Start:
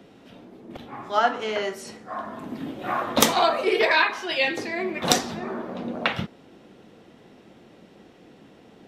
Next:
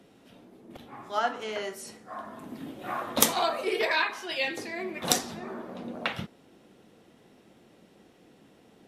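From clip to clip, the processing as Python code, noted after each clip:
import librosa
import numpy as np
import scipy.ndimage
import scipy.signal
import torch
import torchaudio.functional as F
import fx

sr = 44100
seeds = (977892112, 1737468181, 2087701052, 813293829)

y = fx.peak_eq(x, sr, hz=11000.0, db=10.5, octaves=1.1)
y = y * 10.0 ** (-7.0 / 20.0)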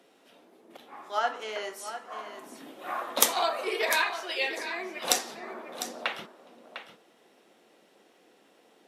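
y = scipy.signal.sosfilt(scipy.signal.butter(2, 420.0, 'highpass', fs=sr, output='sos'), x)
y = y + 10.0 ** (-11.0 / 20.0) * np.pad(y, (int(702 * sr / 1000.0), 0))[:len(y)]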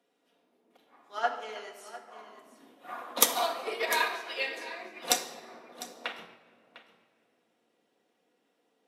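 y = fx.room_shoebox(x, sr, seeds[0], volume_m3=3300.0, walls='mixed', distance_m=1.8)
y = fx.upward_expand(y, sr, threshold_db=-46.0, expansion=1.5)
y = y * 10.0 ** (-1.0 / 20.0)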